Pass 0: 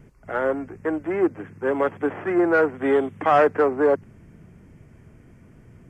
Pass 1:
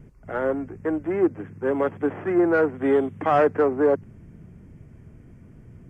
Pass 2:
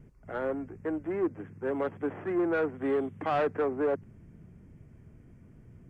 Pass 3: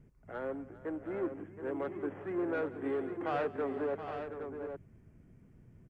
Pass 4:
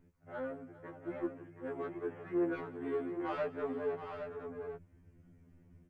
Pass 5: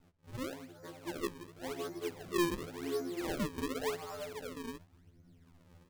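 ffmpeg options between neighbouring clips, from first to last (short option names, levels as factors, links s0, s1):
-af "lowshelf=f=430:g=8,volume=0.596"
-af "asoftclip=type=tanh:threshold=0.188,volume=0.473"
-af "aecho=1:1:173|396|513|722|812:0.106|0.133|0.126|0.316|0.398,volume=0.473"
-af "afftfilt=real='re*2*eq(mod(b,4),0)':imag='im*2*eq(mod(b,4),0)':win_size=2048:overlap=0.75"
-af "acrusher=samples=36:mix=1:aa=0.000001:lfo=1:lforange=57.6:lforate=0.91"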